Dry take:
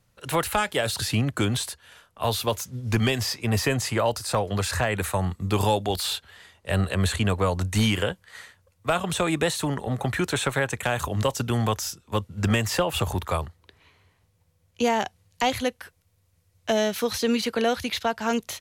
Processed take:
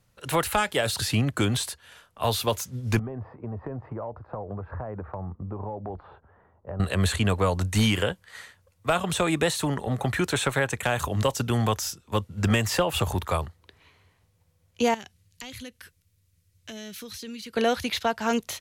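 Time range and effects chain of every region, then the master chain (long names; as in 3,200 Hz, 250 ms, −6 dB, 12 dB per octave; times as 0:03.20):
0:02.99–0:06.80: low-pass filter 1,100 Hz 24 dB per octave + downward compressor 5 to 1, threshold −31 dBFS
0:14.94–0:17.57: parametric band 750 Hz −14.5 dB 1.6 octaves + downward compressor 3 to 1, threshold −39 dBFS
whole clip: no processing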